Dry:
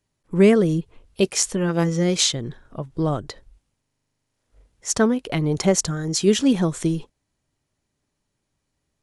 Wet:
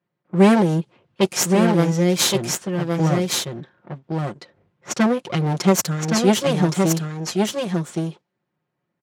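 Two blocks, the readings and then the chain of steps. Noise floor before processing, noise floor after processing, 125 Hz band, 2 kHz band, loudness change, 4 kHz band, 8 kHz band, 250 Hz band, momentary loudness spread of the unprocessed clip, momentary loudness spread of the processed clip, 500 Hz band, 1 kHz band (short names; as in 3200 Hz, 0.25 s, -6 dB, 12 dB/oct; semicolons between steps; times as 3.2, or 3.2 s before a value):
-77 dBFS, -79 dBFS, +4.0 dB, +3.5 dB, +1.0 dB, +1.5 dB, +0.5 dB, +2.5 dB, 13 LU, 13 LU, +1.5 dB, +7.5 dB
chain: minimum comb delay 5.6 ms; HPF 110 Hz 24 dB/oct; low-pass opened by the level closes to 1900 Hz, open at -18 dBFS; on a send: echo 1.118 s -4 dB; on the sum: gain +2.5 dB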